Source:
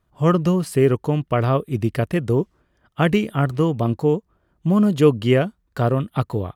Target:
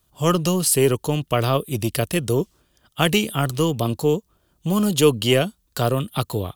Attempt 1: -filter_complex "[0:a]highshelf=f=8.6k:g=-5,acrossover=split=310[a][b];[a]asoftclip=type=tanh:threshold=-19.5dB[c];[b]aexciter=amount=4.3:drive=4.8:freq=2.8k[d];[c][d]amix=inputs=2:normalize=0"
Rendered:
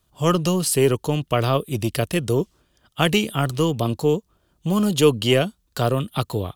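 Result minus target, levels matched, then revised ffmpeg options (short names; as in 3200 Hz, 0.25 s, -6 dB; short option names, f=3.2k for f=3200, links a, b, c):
8000 Hz band -3.0 dB
-filter_complex "[0:a]highshelf=f=8.6k:g=2,acrossover=split=310[a][b];[a]asoftclip=type=tanh:threshold=-19.5dB[c];[b]aexciter=amount=4.3:drive=4.8:freq=2.8k[d];[c][d]amix=inputs=2:normalize=0"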